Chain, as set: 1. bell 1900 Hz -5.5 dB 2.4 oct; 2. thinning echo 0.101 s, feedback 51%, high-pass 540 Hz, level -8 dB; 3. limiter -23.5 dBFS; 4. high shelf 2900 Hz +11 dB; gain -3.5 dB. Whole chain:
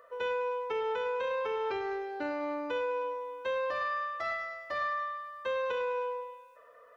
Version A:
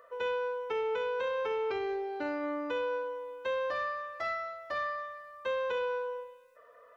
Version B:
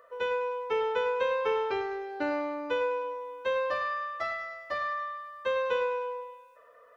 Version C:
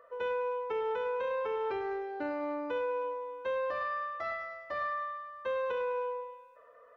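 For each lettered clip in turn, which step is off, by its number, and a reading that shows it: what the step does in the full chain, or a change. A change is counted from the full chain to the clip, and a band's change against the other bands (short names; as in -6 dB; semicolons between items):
2, momentary loudness spread change +2 LU; 3, crest factor change +4.5 dB; 4, 4 kHz band -5.5 dB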